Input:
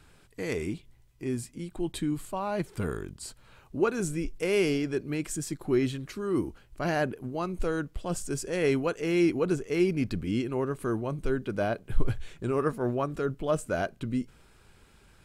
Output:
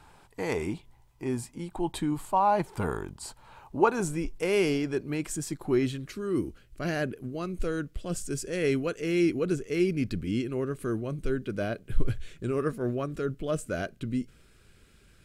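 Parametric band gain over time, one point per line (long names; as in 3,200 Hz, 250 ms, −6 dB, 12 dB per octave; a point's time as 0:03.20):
parametric band 880 Hz 0.67 octaves
0:03.98 +14.5 dB
0:04.49 +4 dB
0:05.71 +4 dB
0:05.96 −4.5 dB
0:06.43 −11.5 dB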